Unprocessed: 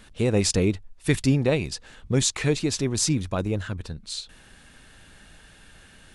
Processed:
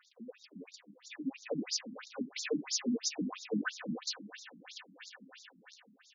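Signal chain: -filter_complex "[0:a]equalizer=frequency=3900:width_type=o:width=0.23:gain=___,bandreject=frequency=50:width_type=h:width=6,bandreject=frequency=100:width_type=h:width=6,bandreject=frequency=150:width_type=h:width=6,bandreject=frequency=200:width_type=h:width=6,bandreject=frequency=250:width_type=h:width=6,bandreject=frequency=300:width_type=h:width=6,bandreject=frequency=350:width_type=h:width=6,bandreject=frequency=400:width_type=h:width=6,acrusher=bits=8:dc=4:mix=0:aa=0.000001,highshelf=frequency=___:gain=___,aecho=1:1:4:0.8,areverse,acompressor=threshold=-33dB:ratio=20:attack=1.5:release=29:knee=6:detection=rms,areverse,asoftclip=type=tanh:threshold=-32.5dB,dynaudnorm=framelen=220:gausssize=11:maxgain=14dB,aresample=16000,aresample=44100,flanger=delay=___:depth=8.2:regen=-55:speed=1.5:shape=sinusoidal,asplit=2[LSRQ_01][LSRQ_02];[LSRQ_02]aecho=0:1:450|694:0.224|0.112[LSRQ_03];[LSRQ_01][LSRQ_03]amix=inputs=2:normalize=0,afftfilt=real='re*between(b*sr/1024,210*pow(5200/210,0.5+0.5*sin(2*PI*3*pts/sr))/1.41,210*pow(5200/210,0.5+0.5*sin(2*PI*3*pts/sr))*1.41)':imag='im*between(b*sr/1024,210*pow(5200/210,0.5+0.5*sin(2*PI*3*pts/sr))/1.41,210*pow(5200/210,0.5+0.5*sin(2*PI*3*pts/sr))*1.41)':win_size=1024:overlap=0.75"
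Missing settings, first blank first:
-9.5, 5600, 8.5, 7.7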